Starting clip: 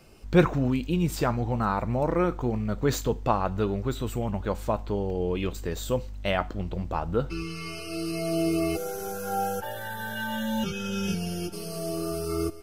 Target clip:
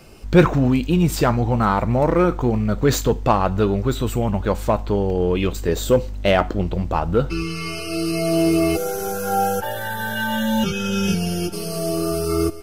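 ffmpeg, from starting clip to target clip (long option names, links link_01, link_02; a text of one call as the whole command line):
ffmpeg -i in.wav -filter_complex "[0:a]asettb=1/sr,asplit=3[link_01][link_02][link_03];[link_01]atrim=end=5.684[link_04];[link_02]atrim=start=5.68:end=6.67,asetpts=PTS-STARTPTS,afade=type=in:duration=0.004:curve=qsin,afade=type=out:start_time=0.986:duration=0.004:curve=qsin,equalizer=frequency=390:width_type=o:width=1.4:gain=5.5[link_05];[link_03]atrim=start=6.666[link_06];[link_04][link_05]acrossfade=duration=0.004:curve1=hsin:curve2=qsin[link_07];[link_07][link_06]acrossfade=duration=0.004:curve1=qsin:curve2=hsin,asplit=2[link_08][link_09];[link_09]asoftclip=type=hard:threshold=-21dB,volume=-4.5dB[link_10];[link_08][link_10]amix=inputs=2:normalize=0,volume=4.5dB" out.wav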